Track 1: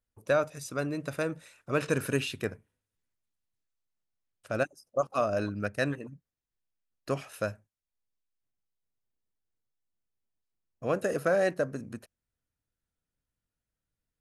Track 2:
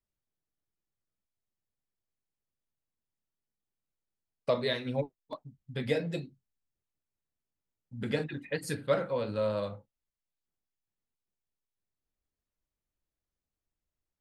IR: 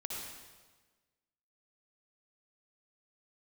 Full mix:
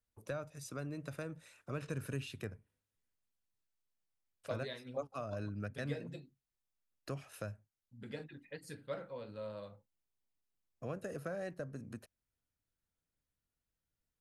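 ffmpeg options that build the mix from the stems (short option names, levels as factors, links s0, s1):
-filter_complex "[0:a]acrossover=split=150[s0][s1];[s1]acompressor=threshold=0.00708:ratio=2.5[s2];[s0][s2]amix=inputs=2:normalize=0,volume=0.708[s3];[1:a]volume=0.2[s4];[s3][s4]amix=inputs=2:normalize=0"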